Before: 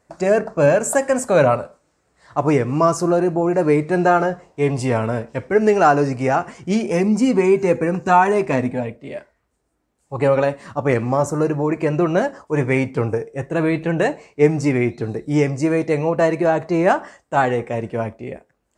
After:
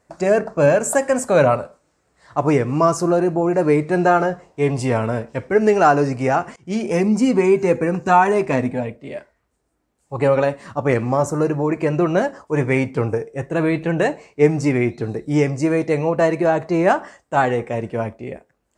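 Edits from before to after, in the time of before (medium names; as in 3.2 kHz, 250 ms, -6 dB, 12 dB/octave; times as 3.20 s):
6.56–6.87 s: fade in, from -22 dB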